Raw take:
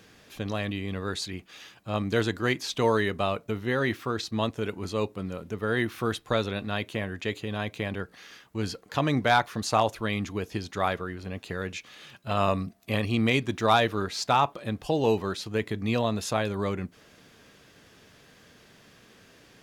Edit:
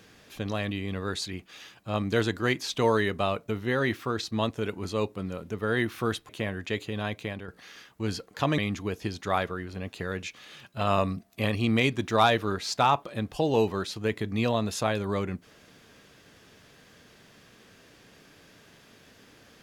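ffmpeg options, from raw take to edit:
-filter_complex "[0:a]asplit=4[a][b][c][d];[a]atrim=end=6.292[e];[b]atrim=start=6.838:end=8.03,asetpts=PTS-STARTPTS,afade=t=out:st=0.692:d=0.5:c=qsin:silence=0.316228[f];[c]atrim=start=8.03:end=9.132,asetpts=PTS-STARTPTS,afade=t=in:d=0.004:c=hsin:silence=0.316228[g];[d]atrim=start=10.078[h];[f][g]concat=n=2:v=0:a=1[i];[e][i]acrossfade=d=0.004:c1=hsin:c2=hsin[j];[j][h]acrossfade=d=0.004:c1=hsin:c2=hsin"

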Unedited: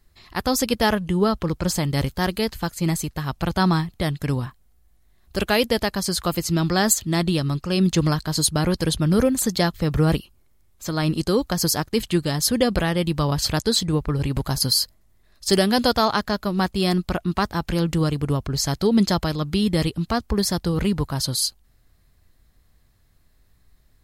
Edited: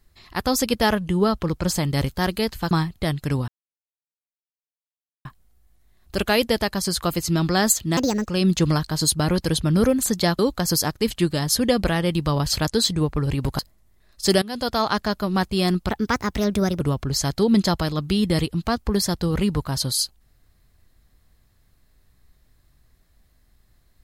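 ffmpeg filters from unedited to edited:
-filter_complex "[0:a]asplit=10[a][b][c][d][e][f][g][h][i][j];[a]atrim=end=2.712[k];[b]atrim=start=3.688:end=4.46,asetpts=PTS-STARTPTS,afade=t=out:st=0.768:d=0.004:c=hsin,apad=pad_dur=1.77[l];[c]atrim=start=4.46:end=7.184,asetpts=PTS-STARTPTS,afade=t=in:d=0.004:c=hsin[m];[d]atrim=start=7.18:end=7.64,asetpts=PTS-STARTPTS,asetrate=65709,aresample=44100[n];[e]atrim=start=7.636:end=9.752[o];[f]atrim=start=11.308:end=14.512[p];[g]atrim=start=14.818:end=15.65,asetpts=PTS-STARTPTS,afade=t=out:st=0.828:d=0.004:c=hsin:silence=0.105925[q];[h]atrim=start=15.65:end=17.124,asetpts=PTS-STARTPTS,afade=t=in:d=0.54:silence=0.105925[r];[i]atrim=start=17.12:end=18.24,asetpts=PTS-STARTPTS,asetrate=53802,aresample=44100,atrim=end_sample=40485,asetpts=PTS-STARTPTS[s];[j]atrim=start=18.236[t];[l][m]concat=n=2:v=0:a=1[u];[k][u]acrossfade=d=0.004:c1=hsin:c2=hsin[v];[v][n]acrossfade=d=0.004:c1=hsin:c2=hsin[w];[w][o]acrossfade=d=0.004:c1=hsin:c2=hsin[x];[x][p]acrossfade=d=0.004:c1=hsin:c2=hsin[y];[q][r]concat=n=2:v=0:a=1[z];[y][z]acrossfade=d=0.004:c1=hsin:c2=hsin[aa];[aa][s]acrossfade=d=0.004:c1=hsin:c2=hsin[ab];[ab][t]acrossfade=d=0.004:c1=hsin:c2=hsin"

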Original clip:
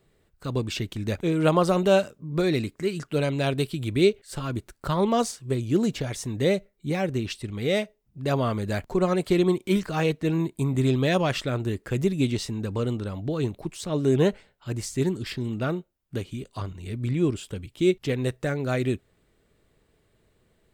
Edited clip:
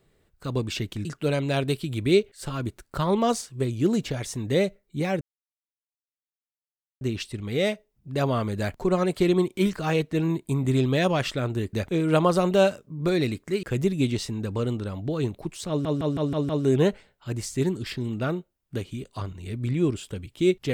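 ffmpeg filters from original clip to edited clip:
-filter_complex "[0:a]asplit=10[a][b][c][d][e][f][g][h][i][j];[a]atrim=end=1.052[k];[b]atrim=start=2.948:end=7.11,asetpts=PTS-STARTPTS,afade=t=out:st=4.158:d=0.004:c=hsin,apad=pad_dur=1.8[l];[c]atrim=start=7.11:end=11.832,asetpts=PTS-STARTPTS,afade=t=in:d=0.004:c=hsin[m];[d]atrim=start=1.048:end=2.952[n];[e]atrim=start=11.828:end=14.052[o];[f]atrim=start=13.888:end=14.052[p];[g]atrim=start=13.888:end=14.052[q];[h]atrim=start=13.888:end=14.052[r];[i]atrim=start=13.888:end=14.052[s];[j]atrim=start=13.888[t];[l][m]concat=n=2:v=0:a=1[u];[k][u]acrossfade=d=0.004:c1=hsin:c2=hsin[v];[v][n]acrossfade=d=0.004:c1=hsin:c2=hsin[w];[w][o]acrossfade=d=0.004:c1=hsin:c2=hsin[x];[x][p]acrossfade=d=0.004:c1=hsin:c2=hsin[y];[y][q]acrossfade=d=0.004:c1=hsin:c2=hsin[z];[z][r]acrossfade=d=0.004:c1=hsin:c2=hsin[aa];[aa][s]acrossfade=d=0.004:c1=hsin:c2=hsin[ab];[ab][t]acrossfade=d=0.004:c1=hsin:c2=hsin"

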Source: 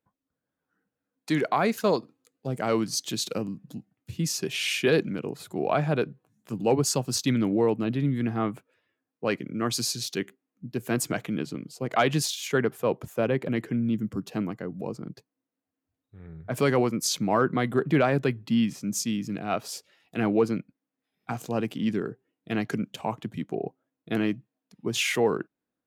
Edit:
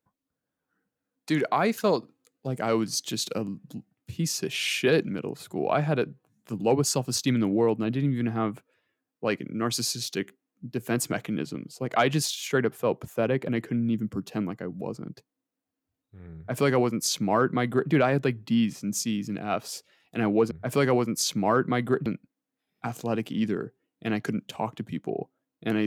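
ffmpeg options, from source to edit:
-filter_complex "[0:a]asplit=3[a][b][c];[a]atrim=end=20.512[d];[b]atrim=start=16.358:end=17.912[e];[c]atrim=start=20.508[f];[d][e]acrossfade=d=0.004:c1=hsin:c2=hsin[g];[g][f]acrossfade=d=0.004:c1=hsin:c2=hsin"

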